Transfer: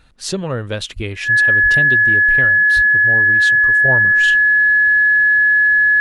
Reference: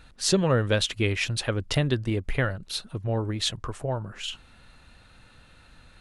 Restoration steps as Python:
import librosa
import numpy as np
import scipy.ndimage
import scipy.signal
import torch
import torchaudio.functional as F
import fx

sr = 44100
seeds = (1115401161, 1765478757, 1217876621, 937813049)

y = fx.notch(x, sr, hz=1700.0, q=30.0)
y = fx.fix_deplosive(y, sr, at_s=(0.95, 1.62, 2.75))
y = fx.fix_level(y, sr, at_s=3.85, step_db=-8.0)